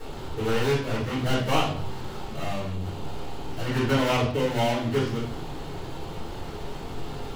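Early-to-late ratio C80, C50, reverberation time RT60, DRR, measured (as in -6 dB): 9.0 dB, 4.5 dB, 0.55 s, -8.5 dB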